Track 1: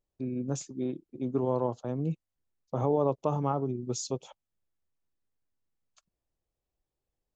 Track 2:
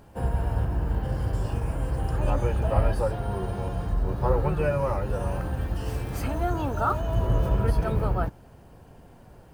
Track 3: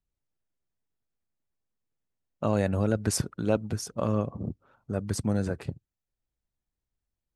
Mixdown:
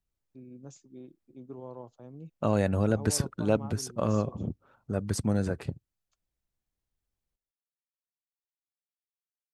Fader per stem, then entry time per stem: -14.5 dB, off, 0.0 dB; 0.15 s, off, 0.00 s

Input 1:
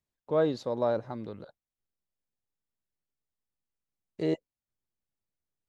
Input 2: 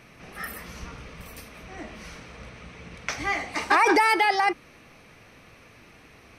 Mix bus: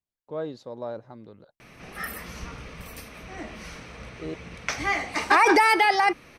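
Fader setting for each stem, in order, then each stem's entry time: -6.5, +1.5 dB; 0.00, 1.60 s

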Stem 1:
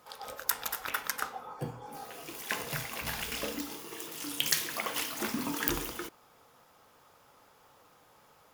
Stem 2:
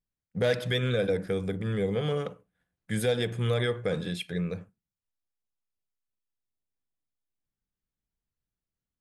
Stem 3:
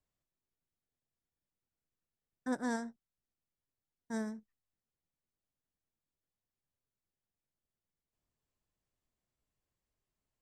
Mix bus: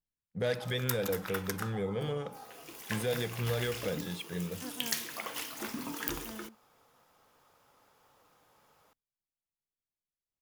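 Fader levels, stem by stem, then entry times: -5.0, -6.0, -10.0 dB; 0.40, 0.00, 2.15 s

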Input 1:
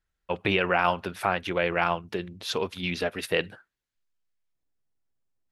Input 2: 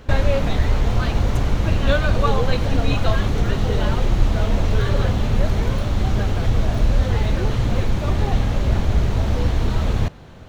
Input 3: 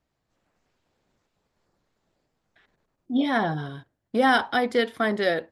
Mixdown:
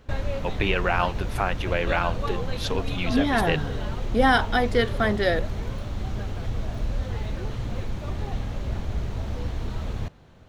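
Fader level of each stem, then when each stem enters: -0.5, -10.5, +0.5 dB; 0.15, 0.00, 0.00 s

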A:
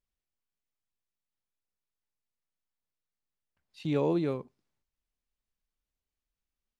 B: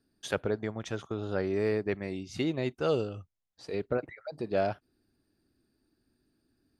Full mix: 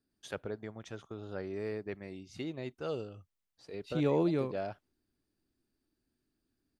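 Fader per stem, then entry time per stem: -1.0, -9.0 dB; 0.10, 0.00 s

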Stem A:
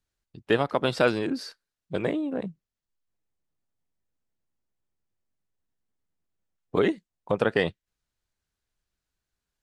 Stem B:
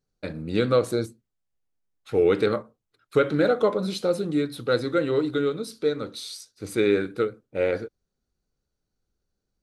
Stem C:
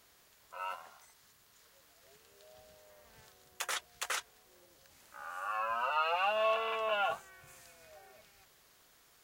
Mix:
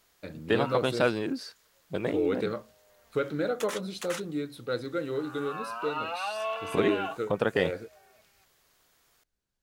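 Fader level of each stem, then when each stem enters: -3.0, -8.5, -2.0 dB; 0.00, 0.00, 0.00 s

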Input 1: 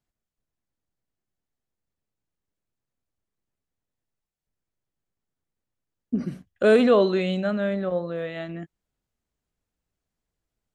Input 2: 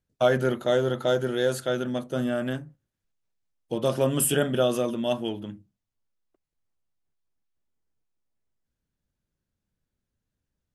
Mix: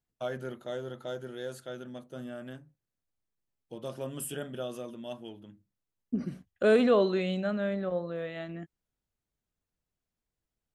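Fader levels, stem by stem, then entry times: -5.5, -14.0 dB; 0.00, 0.00 s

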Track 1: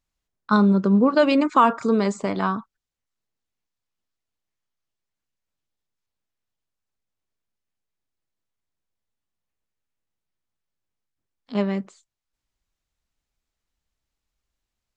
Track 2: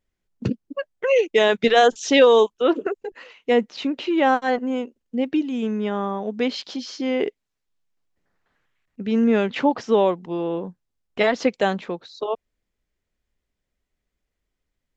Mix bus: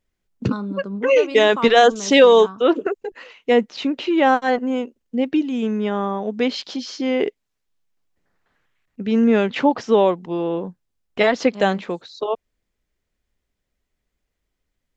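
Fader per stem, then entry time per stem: -11.5, +2.5 dB; 0.00, 0.00 s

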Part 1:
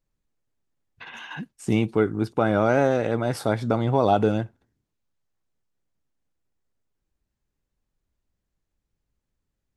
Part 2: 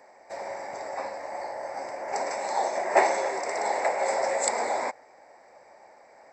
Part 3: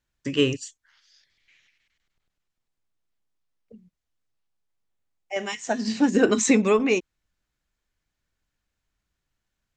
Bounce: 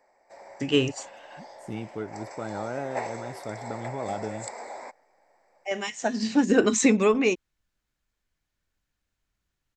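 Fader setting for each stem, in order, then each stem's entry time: -13.5, -11.5, -1.0 dB; 0.00, 0.00, 0.35 s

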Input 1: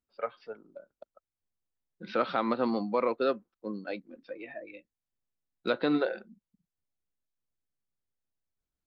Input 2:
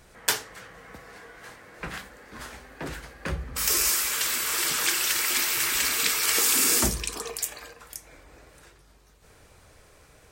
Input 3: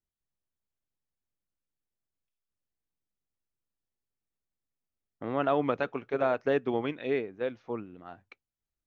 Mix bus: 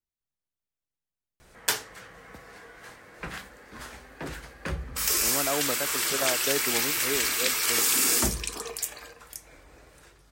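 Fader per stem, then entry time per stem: off, -1.5 dB, -3.5 dB; off, 1.40 s, 0.00 s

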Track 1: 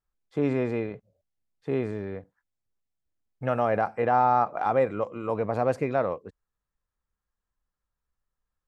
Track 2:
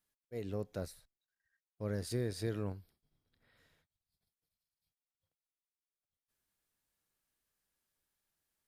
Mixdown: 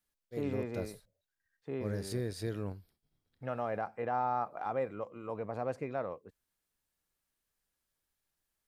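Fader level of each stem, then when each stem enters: -11.0, 0.0 dB; 0.00, 0.00 s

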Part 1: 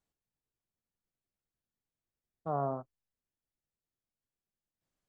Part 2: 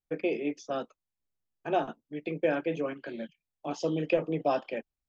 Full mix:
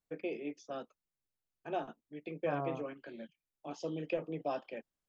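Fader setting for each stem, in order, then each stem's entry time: -5.0, -9.0 dB; 0.00, 0.00 s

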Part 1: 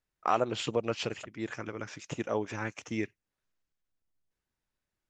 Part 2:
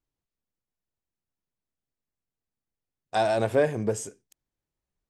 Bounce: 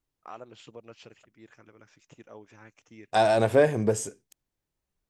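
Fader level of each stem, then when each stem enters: -16.0, +2.5 dB; 0.00, 0.00 s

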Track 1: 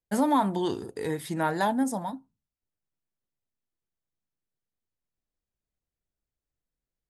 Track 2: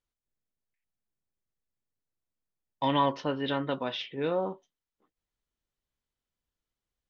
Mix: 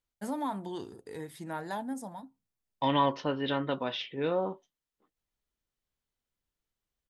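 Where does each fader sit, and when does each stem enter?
-10.5, -0.5 dB; 0.10, 0.00 s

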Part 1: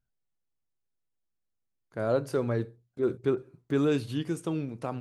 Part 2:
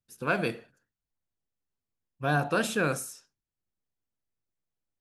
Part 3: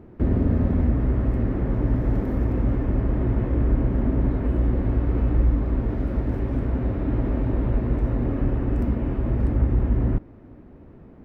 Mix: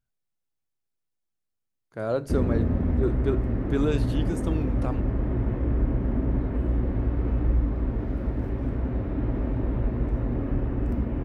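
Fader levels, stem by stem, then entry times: 0.0 dB, off, -3.5 dB; 0.00 s, off, 2.10 s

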